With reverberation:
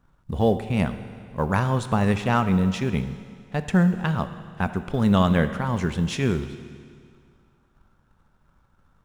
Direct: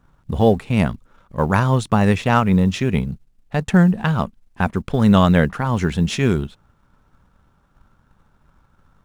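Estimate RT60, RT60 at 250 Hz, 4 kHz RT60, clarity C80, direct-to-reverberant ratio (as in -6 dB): 2.1 s, 2.1 s, 2.0 s, 12.5 dB, 10.0 dB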